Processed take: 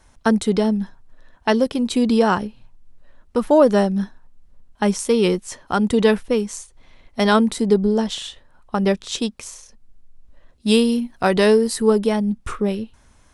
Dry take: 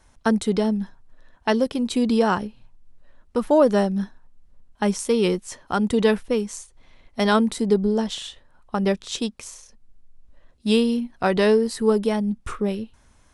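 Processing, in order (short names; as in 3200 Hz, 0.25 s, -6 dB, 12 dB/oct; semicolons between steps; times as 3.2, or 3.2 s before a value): 10.68–11.82 high shelf 8200 Hz +10 dB; gain +3 dB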